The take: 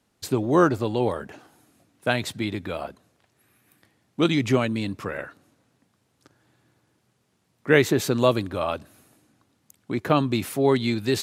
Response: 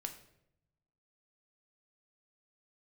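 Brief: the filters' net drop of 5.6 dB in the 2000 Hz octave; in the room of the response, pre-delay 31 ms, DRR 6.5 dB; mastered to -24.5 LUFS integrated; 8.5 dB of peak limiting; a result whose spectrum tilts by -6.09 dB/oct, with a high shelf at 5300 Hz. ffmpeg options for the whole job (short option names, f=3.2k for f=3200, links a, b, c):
-filter_complex "[0:a]equalizer=f=2k:t=o:g=-6.5,highshelf=f=5.3k:g=-6.5,alimiter=limit=-14.5dB:level=0:latency=1,asplit=2[a][b];[1:a]atrim=start_sample=2205,adelay=31[c];[b][c]afir=irnorm=-1:irlink=0,volume=-4.5dB[d];[a][d]amix=inputs=2:normalize=0,volume=2dB"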